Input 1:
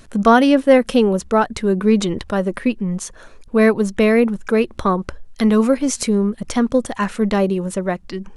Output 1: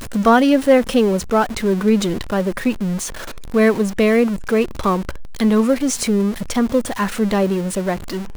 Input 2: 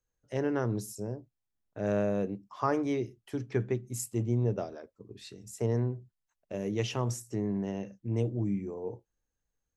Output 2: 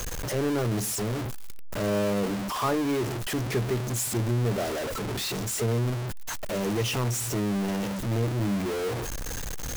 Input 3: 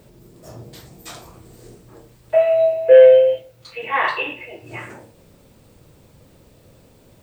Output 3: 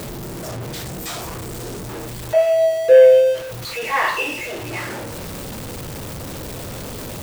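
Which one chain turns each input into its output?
jump at every zero crossing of -24 dBFS; trim -1.5 dB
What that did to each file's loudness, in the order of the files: -0.5 LU, +4.5 LU, -3.0 LU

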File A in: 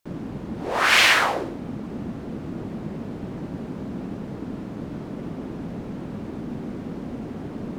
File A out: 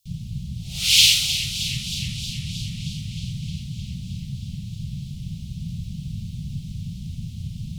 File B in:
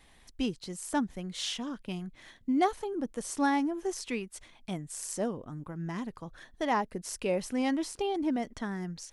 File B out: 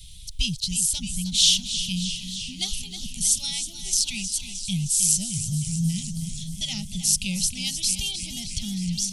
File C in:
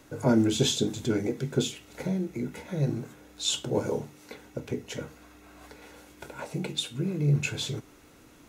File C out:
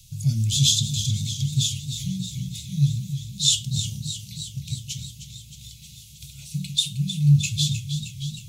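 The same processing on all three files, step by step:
inverse Chebyshev band-stop 270–1800 Hz, stop band 40 dB; modulated delay 312 ms, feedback 72%, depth 64 cents, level -10.5 dB; normalise loudness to -24 LUFS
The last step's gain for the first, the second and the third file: +8.5 dB, +19.0 dB, +10.0 dB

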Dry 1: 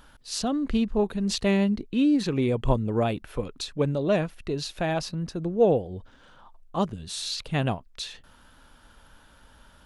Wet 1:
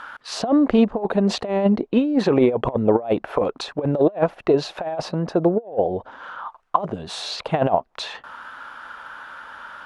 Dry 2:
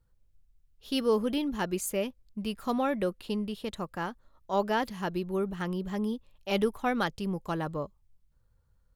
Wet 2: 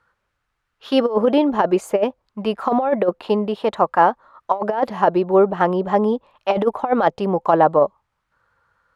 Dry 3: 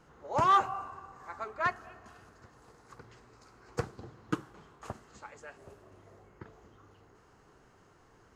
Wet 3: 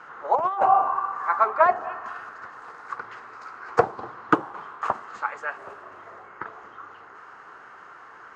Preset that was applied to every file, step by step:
auto-wah 700–1400 Hz, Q 2.1, down, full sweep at -29.5 dBFS; compressor with a negative ratio -36 dBFS, ratio -0.5; peak normalisation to -2 dBFS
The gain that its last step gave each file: +18.5 dB, +22.5 dB, +19.5 dB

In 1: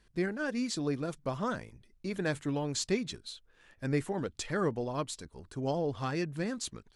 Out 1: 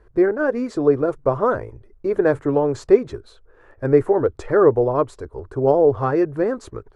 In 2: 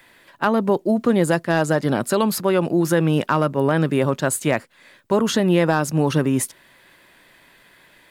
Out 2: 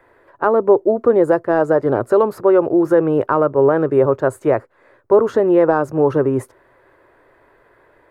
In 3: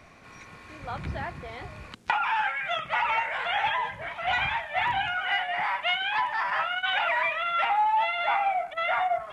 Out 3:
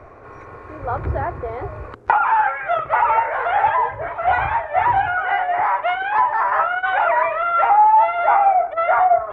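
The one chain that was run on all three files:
FFT filter 120 Hz 0 dB, 180 Hz -15 dB, 410 Hz +6 dB, 730 Hz 0 dB, 1.3 kHz -1 dB, 3.2 kHz -22 dB; peak normalisation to -2 dBFS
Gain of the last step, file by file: +14.5 dB, +3.5 dB, +11.5 dB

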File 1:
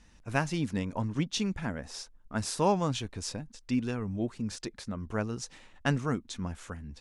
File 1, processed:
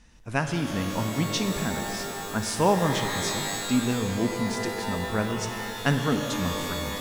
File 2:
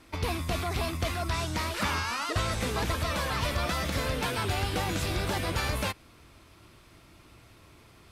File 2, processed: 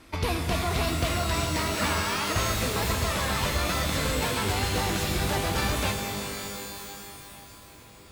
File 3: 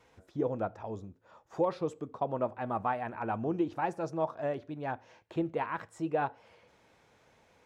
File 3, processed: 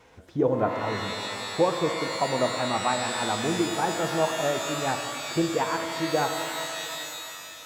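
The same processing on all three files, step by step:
gain riding within 4 dB 2 s; pitch-shifted reverb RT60 2.9 s, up +12 st, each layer -2 dB, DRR 6 dB; normalise loudness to -27 LUFS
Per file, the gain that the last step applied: +2.5 dB, +1.0 dB, +5.5 dB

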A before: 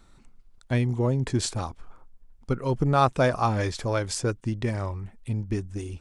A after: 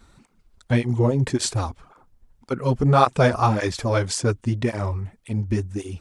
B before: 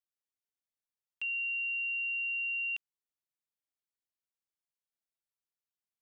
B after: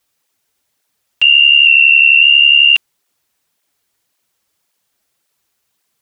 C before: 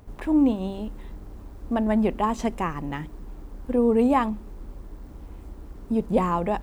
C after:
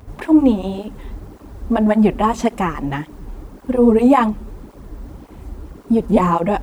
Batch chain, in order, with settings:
cancelling through-zero flanger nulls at 1.8 Hz, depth 7.2 ms; peak normalisation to -1.5 dBFS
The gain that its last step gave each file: +7.5 dB, +29.5 dB, +11.0 dB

